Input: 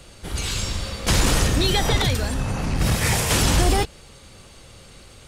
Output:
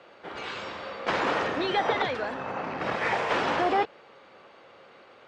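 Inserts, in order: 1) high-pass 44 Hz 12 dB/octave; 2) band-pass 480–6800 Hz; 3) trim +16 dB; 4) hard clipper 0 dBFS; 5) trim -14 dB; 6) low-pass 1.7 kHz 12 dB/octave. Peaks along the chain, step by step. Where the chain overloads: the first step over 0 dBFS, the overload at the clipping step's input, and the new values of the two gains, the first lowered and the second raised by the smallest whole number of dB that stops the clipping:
-7.5 dBFS, -10.0 dBFS, +6.0 dBFS, 0.0 dBFS, -14.0 dBFS, -14.0 dBFS; step 3, 6.0 dB; step 3 +10 dB, step 5 -8 dB

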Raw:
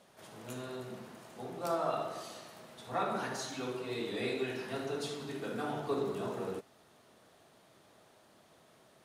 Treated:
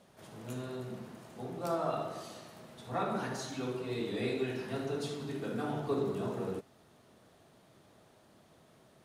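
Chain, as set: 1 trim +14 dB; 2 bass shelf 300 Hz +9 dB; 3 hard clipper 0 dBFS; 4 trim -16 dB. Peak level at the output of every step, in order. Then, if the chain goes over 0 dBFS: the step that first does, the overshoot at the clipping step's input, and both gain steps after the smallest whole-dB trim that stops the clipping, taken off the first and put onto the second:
-6.5 dBFS, -5.0 dBFS, -5.0 dBFS, -21.0 dBFS; nothing clips

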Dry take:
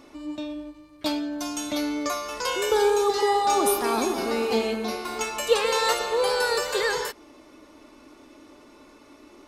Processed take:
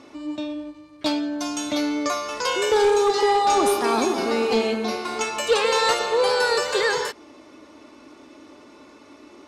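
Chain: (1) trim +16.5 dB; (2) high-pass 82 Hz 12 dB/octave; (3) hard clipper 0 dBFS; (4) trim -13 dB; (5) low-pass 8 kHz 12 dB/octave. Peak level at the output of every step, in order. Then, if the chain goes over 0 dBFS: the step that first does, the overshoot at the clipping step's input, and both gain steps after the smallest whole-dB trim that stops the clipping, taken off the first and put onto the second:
+7.5 dBFS, +7.5 dBFS, 0.0 dBFS, -13.0 dBFS, -12.5 dBFS; step 1, 7.5 dB; step 1 +8.5 dB, step 4 -5 dB

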